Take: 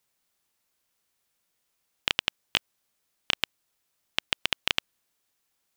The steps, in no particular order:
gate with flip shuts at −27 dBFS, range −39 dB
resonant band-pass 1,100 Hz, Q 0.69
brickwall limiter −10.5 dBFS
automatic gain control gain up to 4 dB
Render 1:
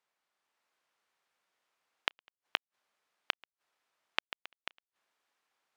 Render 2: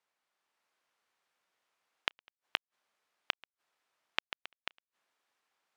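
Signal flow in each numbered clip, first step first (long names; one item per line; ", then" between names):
gate with flip, then resonant band-pass, then brickwall limiter, then automatic gain control
resonant band-pass, then brickwall limiter, then gate with flip, then automatic gain control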